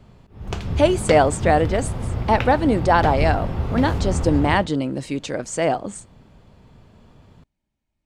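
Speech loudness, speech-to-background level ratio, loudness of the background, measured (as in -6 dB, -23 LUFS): -20.5 LUFS, 5.5 dB, -26.0 LUFS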